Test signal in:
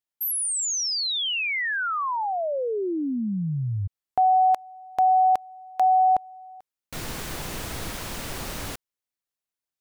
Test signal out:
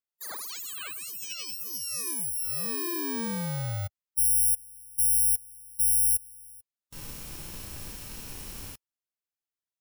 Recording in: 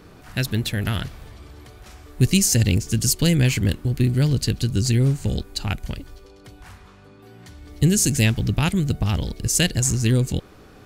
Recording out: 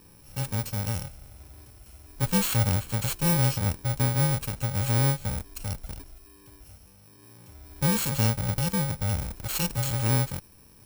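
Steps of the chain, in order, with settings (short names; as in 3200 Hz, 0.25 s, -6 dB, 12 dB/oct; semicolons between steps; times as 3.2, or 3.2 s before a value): FFT order left unsorted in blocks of 64 samples; harmonic-percussive split percussive -8 dB; gain -4.5 dB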